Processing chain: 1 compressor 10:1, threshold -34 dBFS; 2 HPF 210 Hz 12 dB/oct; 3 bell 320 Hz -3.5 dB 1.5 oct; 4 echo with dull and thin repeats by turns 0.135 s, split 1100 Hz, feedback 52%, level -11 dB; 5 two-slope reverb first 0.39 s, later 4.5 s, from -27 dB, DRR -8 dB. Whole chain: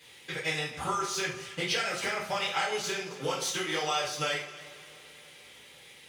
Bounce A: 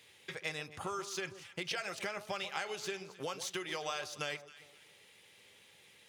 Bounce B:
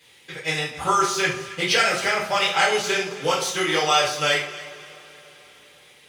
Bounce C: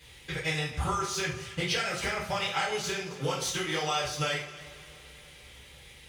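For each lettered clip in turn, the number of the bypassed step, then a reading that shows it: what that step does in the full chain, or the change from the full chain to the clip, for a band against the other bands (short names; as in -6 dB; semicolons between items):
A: 5, crest factor change +2.5 dB; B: 1, mean gain reduction 6.0 dB; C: 2, 125 Hz band +7.5 dB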